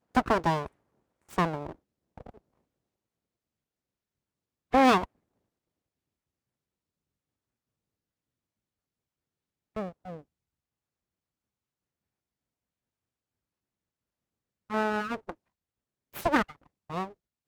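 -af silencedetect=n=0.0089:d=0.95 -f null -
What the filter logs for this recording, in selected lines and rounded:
silence_start: 2.30
silence_end: 4.73 | silence_duration: 2.44
silence_start: 5.05
silence_end: 9.76 | silence_duration: 4.71
silence_start: 10.20
silence_end: 14.70 | silence_duration: 4.50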